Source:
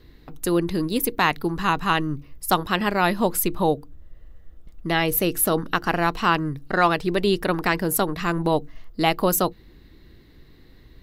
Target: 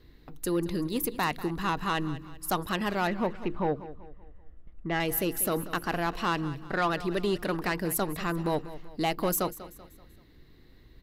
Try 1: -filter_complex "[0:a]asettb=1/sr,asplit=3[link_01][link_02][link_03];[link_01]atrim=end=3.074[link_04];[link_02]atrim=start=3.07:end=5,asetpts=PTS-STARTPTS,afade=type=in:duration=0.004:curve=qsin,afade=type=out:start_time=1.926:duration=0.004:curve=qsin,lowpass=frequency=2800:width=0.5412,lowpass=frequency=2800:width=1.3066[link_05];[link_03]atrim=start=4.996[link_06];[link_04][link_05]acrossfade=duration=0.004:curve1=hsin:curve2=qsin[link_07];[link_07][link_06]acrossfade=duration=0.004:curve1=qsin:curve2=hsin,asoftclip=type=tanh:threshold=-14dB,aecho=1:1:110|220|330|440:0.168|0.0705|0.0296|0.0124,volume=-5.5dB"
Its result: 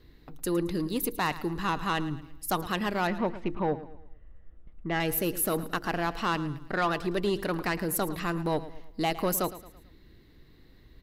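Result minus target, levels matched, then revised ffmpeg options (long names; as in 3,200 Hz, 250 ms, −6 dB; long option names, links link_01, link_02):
echo 82 ms early
-filter_complex "[0:a]asettb=1/sr,asplit=3[link_01][link_02][link_03];[link_01]atrim=end=3.074[link_04];[link_02]atrim=start=3.07:end=5,asetpts=PTS-STARTPTS,afade=type=in:duration=0.004:curve=qsin,afade=type=out:start_time=1.926:duration=0.004:curve=qsin,lowpass=frequency=2800:width=0.5412,lowpass=frequency=2800:width=1.3066[link_05];[link_03]atrim=start=4.996[link_06];[link_04][link_05]acrossfade=duration=0.004:curve1=hsin:curve2=qsin[link_07];[link_07][link_06]acrossfade=duration=0.004:curve1=qsin:curve2=hsin,asoftclip=type=tanh:threshold=-14dB,aecho=1:1:192|384|576|768:0.168|0.0705|0.0296|0.0124,volume=-5.5dB"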